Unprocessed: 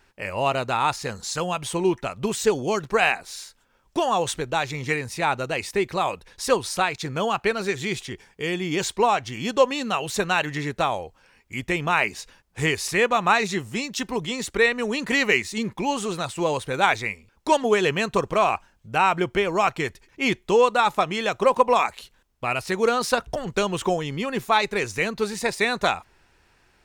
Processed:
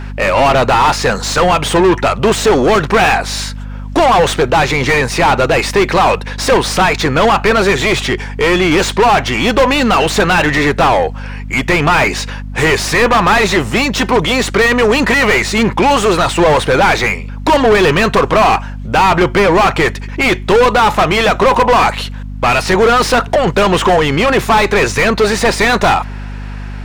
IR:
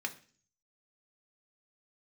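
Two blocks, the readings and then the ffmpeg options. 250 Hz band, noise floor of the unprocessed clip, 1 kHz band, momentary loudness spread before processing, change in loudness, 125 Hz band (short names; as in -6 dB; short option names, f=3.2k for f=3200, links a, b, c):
+13.0 dB, -62 dBFS, +12.0 dB, 9 LU, +12.0 dB, +15.0 dB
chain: -filter_complex "[0:a]asplit=2[a][b];[b]highpass=f=720:p=1,volume=36dB,asoftclip=type=tanh:threshold=-1dB[c];[a][c]amix=inputs=2:normalize=0,lowpass=f=1.7k:p=1,volume=-6dB,aeval=exprs='val(0)+0.0708*(sin(2*PI*50*n/s)+sin(2*PI*2*50*n/s)/2+sin(2*PI*3*50*n/s)/3+sin(2*PI*4*50*n/s)/4+sin(2*PI*5*50*n/s)/5)':c=same"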